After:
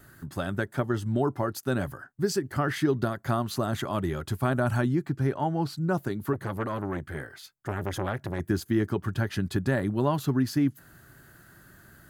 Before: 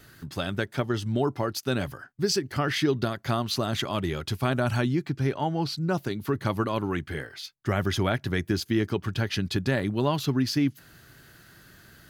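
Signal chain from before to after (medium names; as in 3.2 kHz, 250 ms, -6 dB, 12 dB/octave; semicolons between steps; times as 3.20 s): high-order bell 3.6 kHz -9 dB; band-stop 460 Hz, Q 12; 6.33–8.40 s: transformer saturation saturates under 890 Hz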